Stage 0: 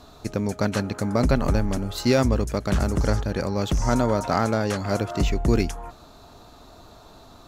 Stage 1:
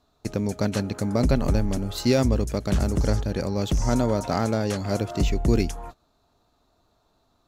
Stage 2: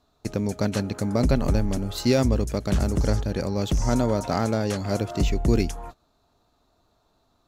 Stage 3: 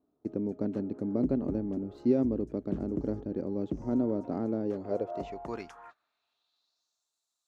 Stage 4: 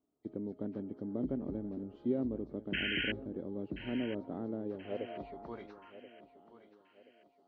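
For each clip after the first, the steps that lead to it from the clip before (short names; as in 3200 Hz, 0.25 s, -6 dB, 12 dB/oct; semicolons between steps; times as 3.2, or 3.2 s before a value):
gate -37 dBFS, range -19 dB; dynamic EQ 1300 Hz, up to -6 dB, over -40 dBFS, Q 0.89
nothing audible
band-pass sweep 310 Hz -> 7900 Hz, 4.64–7.09
nonlinear frequency compression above 1800 Hz 1.5:1; painted sound noise, 2.73–3.12, 1400–3200 Hz -28 dBFS; thinning echo 1.029 s, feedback 41%, high-pass 200 Hz, level -13.5 dB; gain -7.5 dB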